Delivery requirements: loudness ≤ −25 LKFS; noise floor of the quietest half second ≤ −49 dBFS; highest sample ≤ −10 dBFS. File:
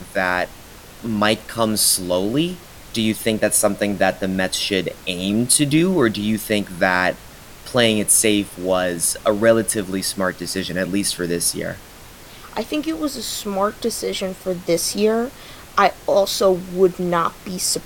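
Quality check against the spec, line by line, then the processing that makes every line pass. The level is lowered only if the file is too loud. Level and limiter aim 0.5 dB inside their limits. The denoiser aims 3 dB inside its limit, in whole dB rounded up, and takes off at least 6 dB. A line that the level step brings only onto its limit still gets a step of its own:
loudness −19.5 LKFS: out of spec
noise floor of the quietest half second −41 dBFS: out of spec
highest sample −2.5 dBFS: out of spec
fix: broadband denoise 6 dB, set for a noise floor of −41 dBFS
level −6 dB
brickwall limiter −10.5 dBFS

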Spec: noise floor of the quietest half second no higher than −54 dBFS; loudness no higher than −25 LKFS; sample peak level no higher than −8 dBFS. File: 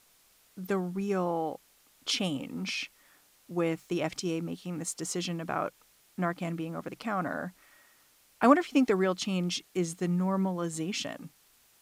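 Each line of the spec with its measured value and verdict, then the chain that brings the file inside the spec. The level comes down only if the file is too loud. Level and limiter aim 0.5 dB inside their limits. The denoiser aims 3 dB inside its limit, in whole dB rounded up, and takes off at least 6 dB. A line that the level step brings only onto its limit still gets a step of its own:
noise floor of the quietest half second −64 dBFS: in spec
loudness −31.0 LKFS: in spec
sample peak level −7.5 dBFS: out of spec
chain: brickwall limiter −8.5 dBFS

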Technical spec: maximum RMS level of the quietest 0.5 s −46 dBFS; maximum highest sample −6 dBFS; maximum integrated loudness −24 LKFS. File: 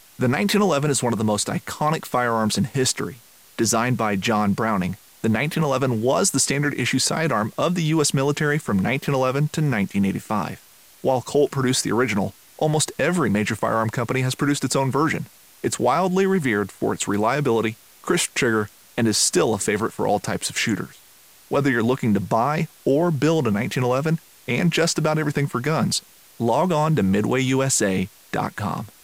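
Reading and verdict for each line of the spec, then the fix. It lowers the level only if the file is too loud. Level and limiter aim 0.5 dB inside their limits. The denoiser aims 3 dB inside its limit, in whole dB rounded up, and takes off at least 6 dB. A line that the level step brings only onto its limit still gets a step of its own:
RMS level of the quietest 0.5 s −50 dBFS: in spec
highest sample −8.0 dBFS: in spec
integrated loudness −21.5 LKFS: out of spec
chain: level −3 dB

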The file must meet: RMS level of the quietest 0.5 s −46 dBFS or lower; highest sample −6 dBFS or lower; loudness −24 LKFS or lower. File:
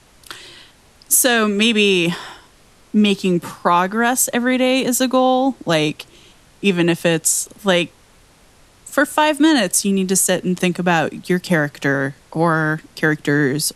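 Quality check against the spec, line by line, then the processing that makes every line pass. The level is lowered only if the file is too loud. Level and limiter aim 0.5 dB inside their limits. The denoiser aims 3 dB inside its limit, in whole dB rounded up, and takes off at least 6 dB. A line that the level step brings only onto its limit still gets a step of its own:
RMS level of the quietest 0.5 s −50 dBFS: in spec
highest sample −2.5 dBFS: out of spec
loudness −17.0 LKFS: out of spec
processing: level −7.5 dB

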